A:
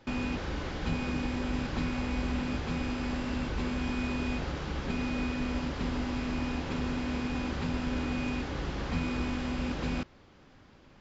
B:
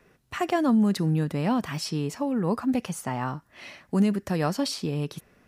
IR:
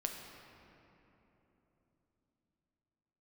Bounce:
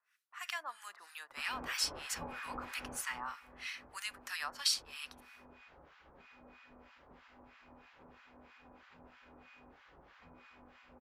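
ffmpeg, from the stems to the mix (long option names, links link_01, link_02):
-filter_complex "[0:a]acrossover=split=510 2700:gain=0.158 1 0.224[link_01][link_02][link_03];[link_01][link_02][link_03]amix=inputs=3:normalize=0,adelay=1300,volume=-1dB,afade=type=out:start_time=2.8:duration=0.57:silence=0.223872[link_04];[1:a]dynaudnorm=framelen=320:gausssize=3:maxgain=13dB,highpass=frequency=1200:width=0.5412,highpass=frequency=1200:width=1.3066,volume=-9.5dB,asplit=2[link_05][link_06];[link_06]volume=-17dB[link_07];[2:a]atrim=start_sample=2205[link_08];[link_07][link_08]afir=irnorm=-1:irlink=0[link_09];[link_04][link_05][link_09]amix=inputs=3:normalize=0,acrossover=split=1100[link_10][link_11];[link_10]aeval=exprs='val(0)*(1-1/2+1/2*cos(2*PI*3.1*n/s))':channel_layout=same[link_12];[link_11]aeval=exprs='val(0)*(1-1/2-1/2*cos(2*PI*3.1*n/s))':channel_layout=same[link_13];[link_12][link_13]amix=inputs=2:normalize=0"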